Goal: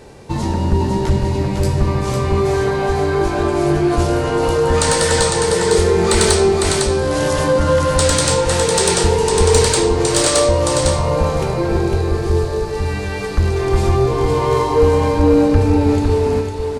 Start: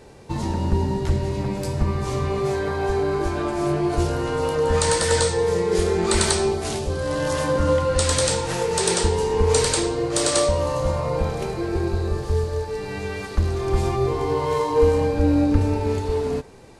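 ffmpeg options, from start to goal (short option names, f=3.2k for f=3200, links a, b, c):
-af "aecho=1:1:504:0.596,acontrast=47"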